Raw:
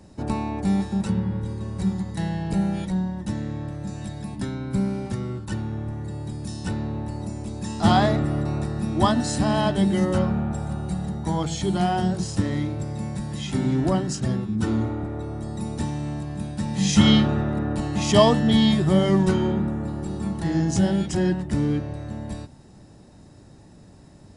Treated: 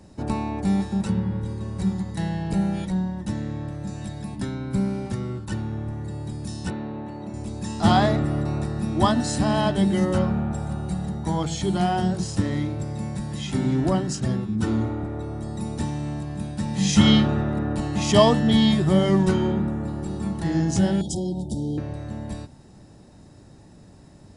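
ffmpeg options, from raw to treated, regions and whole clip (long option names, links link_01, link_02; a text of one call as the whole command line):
ffmpeg -i in.wav -filter_complex "[0:a]asettb=1/sr,asplit=3[link_01][link_02][link_03];[link_01]atrim=end=6.704[link_04];[link_02]atrim=start=6.7:end=7.34,asetpts=PTS-STARTPTS,afade=type=in:duration=0.004:curve=qsin,afade=type=out:start_time=0.636:duration=0.004:curve=qsin,asuperstop=centerf=4900:order=12:qfactor=7.5,acrossover=split=160 4200:gain=0.178 1 0.126[link_05][link_06][link_07];[link_05][link_06][link_07]amix=inputs=3:normalize=0[link_08];[link_03]atrim=start=7.336[link_09];[link_04][link_08]acrossfade=duration=0.004:curve1=hsin:curve2=qsin[link_10];[link_10][link_09]acrossfade=duration=0.004:curve1=qsin:curve2=hsin,asettb=1/sr,asplit=3[link_11][link_12][link_13];[link_11]atrim=end=21.014[link_14];[link_12]atrim=start=21.01:end=21.78,asetpts=PTS-STARTPTS,afade=type=in:duration=0.004:curve=qsin,afade=type=out:start_time=0.766:duration=0.004:curve=qsin,highshelf=frequency=7700:gain=8,acompressor=threshold=-23dB:ratio=5:attack=3.2:release=140:knee=1:detection=peak,asuperstop=centerf=1700:order=20:qfactor=0.74[link_15];[link_13]atrim=start=21.776[link_16];[link_14][link_15]acrossfade=duration=0.004:curve1=hsin:curve2=qsin[link_17];[link_17][link_16]acrossfade=duration=0.004:curve1=qsin:curve2=hsin" out.wav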